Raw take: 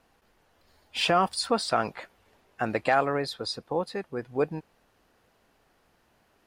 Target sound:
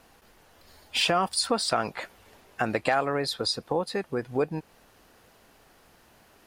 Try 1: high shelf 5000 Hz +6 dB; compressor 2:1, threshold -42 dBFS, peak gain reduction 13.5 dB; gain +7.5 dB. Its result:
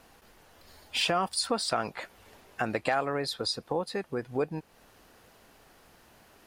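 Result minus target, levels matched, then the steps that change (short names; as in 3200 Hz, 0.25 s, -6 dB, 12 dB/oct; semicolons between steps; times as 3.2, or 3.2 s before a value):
compressor: peak gain reduction +3.5 dB
change: compressor 2:1, threshold -35.5 dBFS, peak gain reduction 10 dB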